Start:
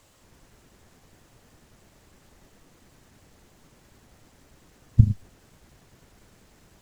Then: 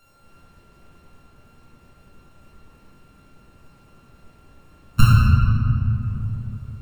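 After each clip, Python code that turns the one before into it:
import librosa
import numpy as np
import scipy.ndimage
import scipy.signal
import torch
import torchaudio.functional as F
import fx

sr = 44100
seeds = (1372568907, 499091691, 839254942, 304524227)

y = np.r_[np.sort(x[:len(x) // 32 * 32].reshape(-1, 32), axis=1).ravel(), x[len(x) // 32 * 32:]]
y = fx.dereverb_blind(y, sr, rt60_s=1.6)
y = fx.room_shoebox(y, sr, seeds[0], volume_m3=140.0, walls='hard', distance_m=1.2)
y = y * librosa.db_to_amplitude(-2.5)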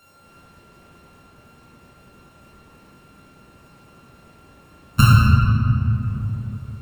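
y = fx.highpass(x, sr, hz=120.0, slope=6)
y = y * librosa.db_to_amplitude(5.0)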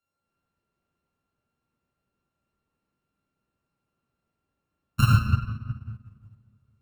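y = fx.upward_expand(x, sr, threshold_db=-27.0, expansion=2.5)
y = y * librosa.db_to_amplitude(-4.5)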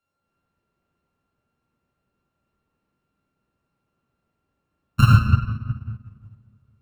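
y = fx.high_shelf(x, sr, hz=4700.0, db=-8.0)
y = y * librosa.db_to_amplitude(5.5)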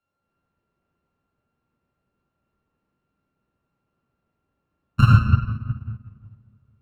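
y = fx.lowpass(x, sr, hz=3000.0, slope=6)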